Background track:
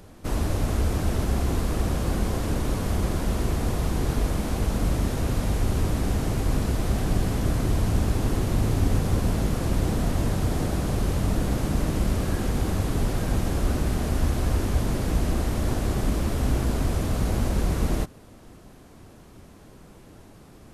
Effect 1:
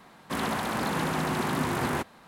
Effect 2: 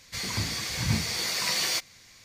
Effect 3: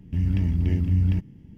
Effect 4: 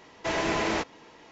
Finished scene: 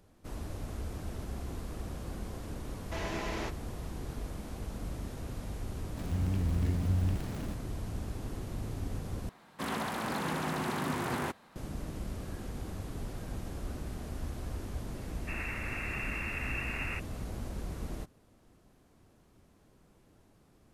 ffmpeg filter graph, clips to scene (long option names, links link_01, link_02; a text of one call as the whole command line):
ffmpeg -i bed.wav -i cue0.wav -i cue1.wav -i cue2.wav -i cue3.wav -filter_complex "[1:a]asplit=2[link_01][link_02];[0:a]volume=-15dB[link_03];[3:a]aeval=exprs='val(0)+0.5*0.0447*sgn(val(0))':channel_layout=same[link_04];[link_02]lowpass=frequency=2500:width_type=q:width=0.5098,lowpass=frequency=2500:width_type=q:width=0.6013,lowpass=frequency=2500:width_type=q:width=0.9,lowpass=frequency=2500:width_type=q:width=2.563,afreqshift=-2900[link_05];[link_03]asplit=2[link_06][link_07];[link_06]atrim=end=9.294[link_08];[link_01]atrim=end=2.27,asetpts=PTS-STARTPTS,volume=-5.5dB[link_09];[link_07]atrim=start=11.556[link_10];[4:a]atrim=end=1.31,asetpts=PTS-STARTPTS,volume=-10.5dB,afade=type=in:duration=0.004:curve=hsin,afade=type=out:start_time=1.306:duration=0.004:curve=hsin,adelay=2670[link_11];[link_04]atrim=end=1.57,asetpts=PTS-STARTPTS,volume=-10dB,afade=type=in:duration=0.004:curve=hsin,afade=type=out:start_time=1.566:duration=0.004:curve=hsin,adelay=5970[link_12];[link_05]atrim=end=2.27,asetpts=PTS-STARTPTS,volume=-10.5dB,afade=type=in:duration=0.004:curve=hsin,afade=type=out:start_time=2.266:duration=0.004:curve=hsin,adelay=14970[link_13];[link_08][link_09]acrossfade=duration=0.004:curve1=hsin:curve2=hsin[link_14];[link_14][link_10]acrossfade=duration=0.004:curve1=hsin:curve2=hsin[link_15];[link_15][link_11][link_12][link_13]amix=inputs=4:normalize=0" out.wav